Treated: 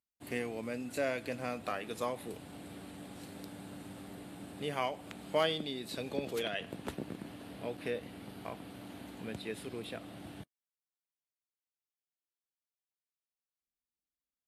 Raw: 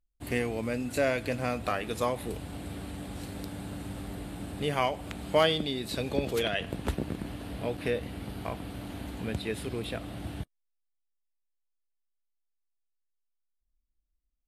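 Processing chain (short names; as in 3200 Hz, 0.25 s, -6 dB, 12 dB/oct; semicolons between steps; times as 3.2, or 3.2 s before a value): HPF 150 Hz 12 dB/oct; gain -6.5 dB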